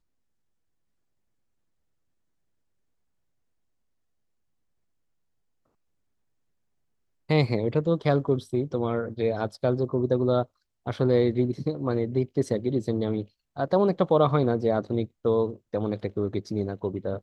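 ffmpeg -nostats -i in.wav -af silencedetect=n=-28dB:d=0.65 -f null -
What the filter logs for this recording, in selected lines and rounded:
silence_start: 0.00
silence_end: 7.30 | silence_duration: 7.30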